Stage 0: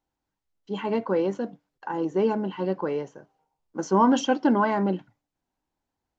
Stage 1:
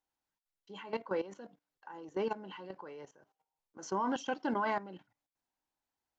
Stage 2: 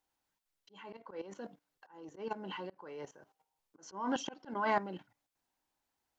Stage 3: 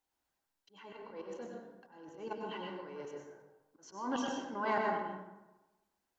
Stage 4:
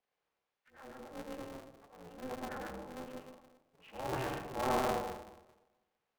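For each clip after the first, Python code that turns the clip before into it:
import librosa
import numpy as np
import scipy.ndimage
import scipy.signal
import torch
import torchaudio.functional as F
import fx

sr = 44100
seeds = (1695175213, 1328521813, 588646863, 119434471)

y1 = fx.low_shelf(x, sr, hz=500.0, db=-11.5)
y1 = fx.level_steps(y1, sr, step_db=15)
y1 = y1 * 10.0 ** (-2.0 / 20.0)
y2 = fx.auto_swell(y1, sr, attack_ms=347.0)
y2 = y2 * 10.0 ** (5.0 / 20.0)
y3 = fx.rev_plate(y2, sr, seeds[0], rt60_s=1.1, hf_ratio=0.5, predelay_ms=85, drr_db=-0.5)
y3 = y3 * 10.0 ** (-3.0 / 20.0)
y4 = fx.partial_stretch(y3, sr, pct=75)
y4 = fx.bandpass_edges(y4, sr, low_hz=310.0, high_hz=2500.0)
y4 = y4 * np.sign(np.sin(2.0 * np.pi * 130.0 * np.arange(len(y4)) / sr))
y4 = y4 * 10.0 ** (2.5 / 20.0)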